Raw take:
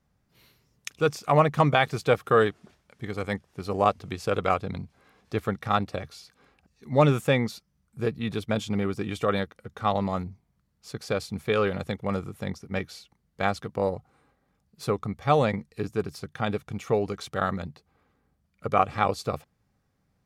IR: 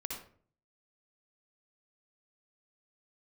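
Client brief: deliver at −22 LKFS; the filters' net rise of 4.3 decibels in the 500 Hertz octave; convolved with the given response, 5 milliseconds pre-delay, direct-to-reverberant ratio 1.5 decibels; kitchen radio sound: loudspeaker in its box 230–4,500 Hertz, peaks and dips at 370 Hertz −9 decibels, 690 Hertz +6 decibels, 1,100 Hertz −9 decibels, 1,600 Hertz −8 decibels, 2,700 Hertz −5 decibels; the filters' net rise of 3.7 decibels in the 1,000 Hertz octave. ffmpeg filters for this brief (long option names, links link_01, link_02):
-filter_complex "[0:a]equalizer=frequency=500:width_type=o:gain=4.5,equalizer=frequency=1000:width_type=o:gain=3.5,asplit=2[link_01][link_02];[1:a]atrim=start_sample=2205,adelay=5[link_03];[link_02][link_03]afir=irnorm=-1:irlink=0,volume=-1.5dB[link_04];[link_01][link_04]amix=inputs=2:normalize=0,highpass=230,equalizer=frequency=370:width_type=q:width=4:gain=-9,equalizer=frequency=690:width_type=q:width=4:gain=6,equalizer=frequency=1100:width_type=q:width=4:gain=-9,equalizer=frequency=1600:width_type=q:width=4:gain=-8,equalizer=frequency=2700:width_type=q:width=4:gain=-5,lowpass=frequency=4500:width=0.5412,lowpass=frequency=4500:width=1.3066,volume=0.5dB"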